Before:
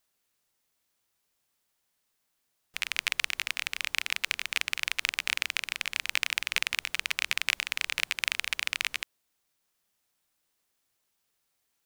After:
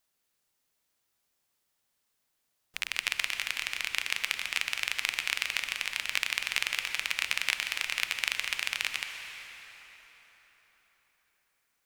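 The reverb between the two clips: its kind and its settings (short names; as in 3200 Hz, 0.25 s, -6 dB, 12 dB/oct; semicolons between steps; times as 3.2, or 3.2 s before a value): plate-style reverb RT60 4.6 s, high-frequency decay 0.7×, pre-delay 0.11 s, DRR 6 dB; gain -1.5 dB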